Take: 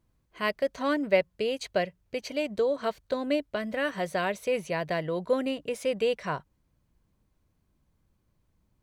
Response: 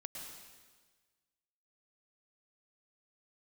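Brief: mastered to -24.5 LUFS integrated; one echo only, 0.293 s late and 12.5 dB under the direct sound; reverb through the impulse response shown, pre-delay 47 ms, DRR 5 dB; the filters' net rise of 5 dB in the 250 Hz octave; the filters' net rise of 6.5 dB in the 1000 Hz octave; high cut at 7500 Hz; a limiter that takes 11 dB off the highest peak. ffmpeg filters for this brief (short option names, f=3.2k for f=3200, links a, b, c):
-filter_complex "[0:a]lowpass=7.5k,equalizer=f=250:t=o:g=5.5,equalizer=f=1k:t=o:g=8,alimiter=limit=-18dB:level=0:latency=1,aecho=1:1:293:0.237,asplit=2[a][b];[1:a]atrim=start_sample=2205,adelay=47[c];[b][c]afir=irnorm=-1:irlink=0,volume=-2.5dB[d];[a][d]amix=inputs=2:normalize=0,volume=2.5dB"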